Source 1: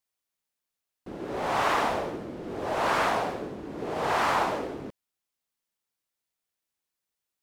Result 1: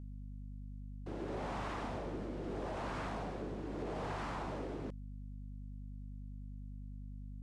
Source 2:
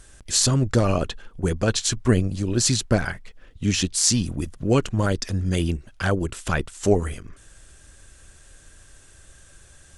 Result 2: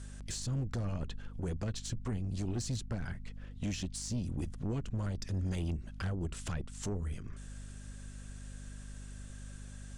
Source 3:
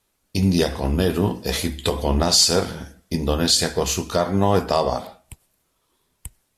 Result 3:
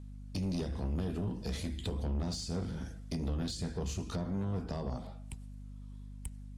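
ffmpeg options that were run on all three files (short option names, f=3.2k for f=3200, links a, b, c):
-filter_complex "[0:a]lowpass=f=9.9k:w=0.5412,lowpass=f=9.9k:w=1.3066,acrossover=split=280[a][b];[a]alimiter=limit=-20.5dB:level=0:latency=1:release=158[c];[b]acompressor=threshold=-36dB:ratio=8[d];[c][d]amix=inputs=2:normalize=0,aeval=exprs='val(0)+0.00891*(sin(2*PI*50*n/s)+sin(2*PI*2*50*n/s)/2+sin(2*PI*3*50*n/s)/3+sin(2*PI*4*50*n/s)/4+sin(2*PI*5*50*n/s)/5)':c=same,asoftclip=type=tanh:threshold=-25dB,volume=-4dB"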